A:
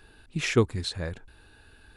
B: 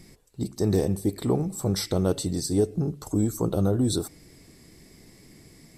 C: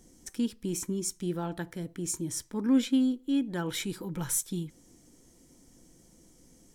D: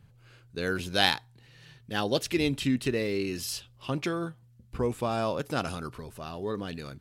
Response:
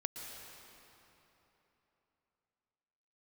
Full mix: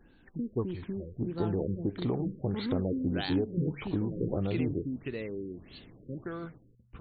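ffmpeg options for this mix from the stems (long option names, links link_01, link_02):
-filter_complex "[0:a]adynamicequalizer=threshold=0.00501:dfrequency=3300:dqfactor=1.3:tfrequency=3300:tqfactor=1.3:attack=5:release=100:ratio=0.375:range=1.5:mode=cutabove:tftype=bell,volume=-10.5dB[link_01];[1:a]acompressor=threshold=-25dB:ratio=6,adelay=800,volume=-2dB[link_02];[2:a]volume=-3dB[link_03];[3:a]adelay=2200,volume=-7.5dB[link_04];[link_03][link_04]amix=inputs=2:normalize=0,acompressor=threshold=-31dB:ratio=5,volume=0dB[link_05];[link_01][link_02][link_05]amix=inputs=3:normalize=0,afftfilt=real='re*lt(b*sr/1024,520*pow(4600/520,0.5+0.5*sin(2*PI*1.6*pts/sr)))':imag='im*lt(b*sr/1024,520*pow(4600/520,0.5+0.5*sin(2*PI*1.6*pts/sr)))':win_size=1024:overlap=0.75"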